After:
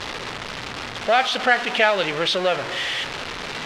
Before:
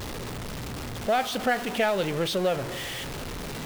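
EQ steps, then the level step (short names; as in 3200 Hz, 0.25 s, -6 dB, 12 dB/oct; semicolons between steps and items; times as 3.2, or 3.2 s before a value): LPF 4000 Hz 12 dB/oct; tilt shelf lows -6.5 dB, about 690 Hz; low shelf 190 Hz -6.5 dB; +6.0 dB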